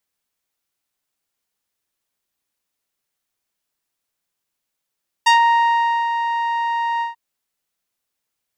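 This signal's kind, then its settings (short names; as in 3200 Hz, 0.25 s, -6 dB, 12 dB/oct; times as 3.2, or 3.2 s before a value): synth note saw A#5 12 dB/oct, low-pass 1600 Hz, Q 0.74, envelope 2.5 oct, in 0.13 s, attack 11 ms, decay 0.81 s, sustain -8 dB, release 0.14 s, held 1.75 s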